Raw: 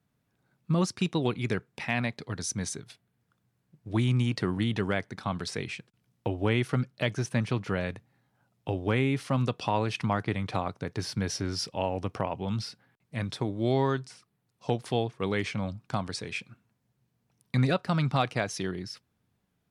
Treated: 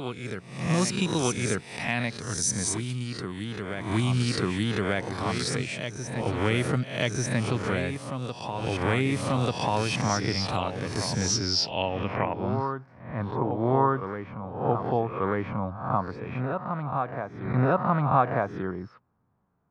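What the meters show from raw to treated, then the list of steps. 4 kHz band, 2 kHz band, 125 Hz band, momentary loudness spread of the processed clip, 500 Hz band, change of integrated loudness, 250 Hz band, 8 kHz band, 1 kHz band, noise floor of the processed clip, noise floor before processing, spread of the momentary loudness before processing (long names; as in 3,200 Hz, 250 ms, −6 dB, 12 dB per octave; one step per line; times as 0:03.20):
+5.5 dB, +3.0 dB, +1.5 dB, 10 LU, +3.5 dB, +2.5 dB, +2.0 dB, +8.5 dB, +6.5 dB, −50 dBFS, −76 dBFS, 10 LU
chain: peak hold with a rise ahead of every peak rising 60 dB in 0.60 s
low-pass filter sweep 9,100 Hz → 1,100 Hz, 0:11.06–0:12.74
backwards echo 1,189 ms −7 dB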